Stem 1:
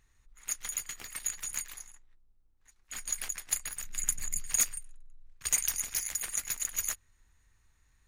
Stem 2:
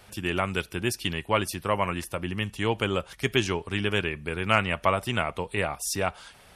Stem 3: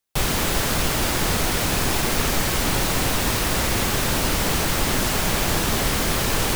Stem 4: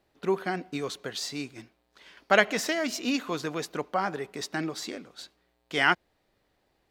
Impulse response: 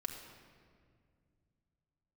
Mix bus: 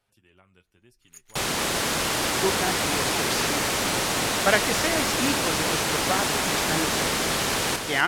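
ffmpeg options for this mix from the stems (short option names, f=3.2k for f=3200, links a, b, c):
-filter_complex "[0:a]adelay=650,volume=-14dB[a];[1:a]flanger=delay=7.2:depth=4:regen=40:speed=0.94:shape=sinusoidal,acompressor=threshold=-54dB:ratio=1.5,volume=-19dB,asplit=2[b][c];[c]volume=-20dB[d];[2:a]highpass=f=280:p=1,lowpass=11k,adelay=1200,volume=-1.5dB,asplit=2[e][f];[f]volume=-6.5dB[g];[3:a]adelay=2150,volume=0dB[h];[4:a]atrim=start_sample=2205[i];[d][i]afir=irnorm=-1:irlink=0[j];[g]aecho=0:1:248|496|744|992|1240|1488|1736:1|0.51|0.26|0.133|0.0677|0.0345|0.0176[k];[a][b][e][h][j][k]amix=inputs=6:normalize=0"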